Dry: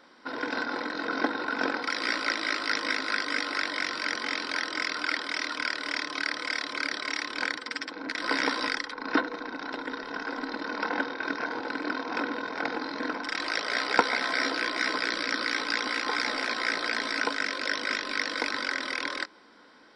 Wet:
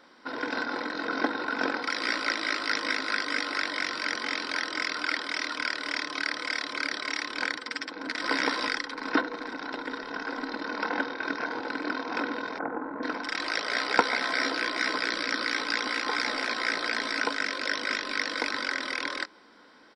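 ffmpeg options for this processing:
ffmpeg -i in.wav -filter_complex "[0:a]asplit=2[link_01][link_02];[link_02]afade=type=in:start_time=7.57:duration=0.01,afade=type=out:start_time=8.21:duration=0.01,aecho=0:1:440|880|1320|1760|2200|2640|3080|3520:0.501187|0.300712|0.180427|0.108256|0.0649539|0.0389723|0.0233834|0.01403[link_03];[link_01][link_03]amix=inputs=2:normalize=0,asplit=3[link_04][link_05][link_06];[link_04]afade=type=out:start_time=12.57:duration=0.02[link_07];[link_05]lowpass=frequency=1400:width=0.5412,lowpass=frequency=1400:width=1.3066,afade=type=in:start_time=12.57:duration=0.02,afade=type=out:start_time=13.02:duration=0.02[link_08];[link_06]afade=type=in:start_time=13.02:duration=0.02[link_09];[link_07][link_08][link_09]amix=inputs=3:normalize=0" out.wav

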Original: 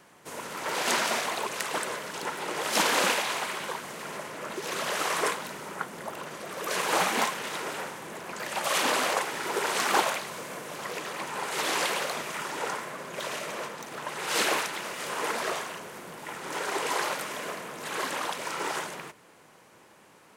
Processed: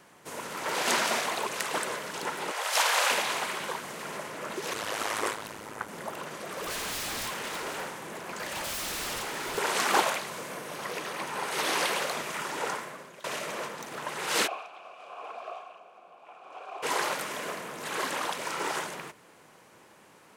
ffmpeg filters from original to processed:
ffmpeg -i in.wav -filter_complex "[0:a]asettb=1/sr,asplit=3[link_01][link_02][link_03];[link_01]atrim=end=2.514[link_04];[link_02]atrim=start=2.51:end=3.11,asetpts=PTS-STARTPTS,afade=type=in:duration=0.004:curve=qsin,afade=type=out:start_time=0.596:duration=0.004:curve=qsin,highpass=frequency=570:width=0.5412,highpass=frequency=570:width=1.3066[link_05];[link_03]atrim=start=3.106[link_06];[link_04][link_05]acrossfade=duration=0.004:curve1=hsin:curve2=qsin[link_07];[link_07][link_06]acrossfade=duration=0.004:curve1=qsin:curve2=hsin,asettb=1/sr,asplit=3[link_08][link_09][link_10];[link_08]atrim=end=4.734[link_11];[link_09]atrim=start=4.73:end=5.89,asetpts=PTS-STARTPTS,afade=type=in:duration=0.004:curve=qsin,afade=type=out:start_time=1.156:duration=0.004:curve=qsin,aeval=exprs='val(0)*sin(2*PI*53*n/s)':channel_layout=same[link_12];[link_10]atrim=start=5.886[link_13];[link_11][link_12]acrossfade=duration=0.004:curve1=hsin:curve2=qsin[link_14];[link_14][link_13]acrossfade=duration=0.004:curve1=qsin:curve2=hsin,asettb=1/sr,asplit=3[link_15][link_16][link_17];[link_15]atrim=end=6.544[link_18];[link_16]atrim=start=6.54:end=9.58,asetpts=PTS-STARTPTS,afade=type=in:duration=0.004:curve=qsin,afade=type=out:start_time=3.036:duration=0.004:curve=qsin,aeval=exprs='0.0335*(abs(mod(val(0)/0.0335+3,4)-2)-1)':channel_layout=same[link_19];[link_17]atrim=start=9.576[link_20];[link_18][link_19]acrossfade=duration=0.004:curve1=hsin:curve2=qsin[link_21];[link_21][link_20]acrossfade=duration=0.004:curve1=qsin:curve2=hsin,asettb=1/sr,asplit=3[link_22][link_23][link_24];[link_22]atrim=end=10.504[link_25];[link_23]atrim=start=10.5:end=11.94,asetpts=PTS-STARTPTS,afade=type=in:duration=0.004:curve=qsin,afade=type=out:start_time=1.436:duration=0.004:curve=qsin,bandreject=frequency=7300:width=11[link_26];[link_24]atrim=start=11.936[link_27];[link_25][link_26]acrossfade=duration=0.004:curve1=hsin:curve2=qsin[link_28];[link_28][link_27]acrossfade=duration=0.004:curve1=qsin:curve2=hsin,asplit=3[link_29][link_30][link_31];[link_29]afade=type=out:start_time=14.46:duration=0.02[link_32];[link_30]asplit=3[link_33][link_34][link_35];[link_33]bandpass=frequency=730:width_type=q:width=8,volume=0dB[link_36];[link_34]bandpass=frequency=1090:width_type=q:width=8,volume=-6dB[link_37];[link_35]bandpass=frequency=2440:width_type=q:width=8,volume=-9dB[link_38];[link_36][link_37][link_38]amix=inputs=3:normalize=0,afade=type=in:start_time=14.46:duration=0.02,afade=type=out:start_time=16.82:duration=0.02[link_39];[link_31]afade=type=in:start_time=16.82:duration=0.02[link_40];[link_32][link_39][link_40]amix=inputs=3:normalize=0,asplit=2[link_41][link_42];[link_41]atrim=end=13.24,asetpts=PTS-STARTPTS,afade=type=out:start_time=12.71:duration=0.53:silence=0.105925[link_43];[link_42]atrim=start=13.24,asetpts=PTS-STARTPTS,afade=type=in:duration=0.004:curve=hsin:silence=0.105925[link_44];[link_43][link_44]concat=n=2:v=0:a=1" out.wav

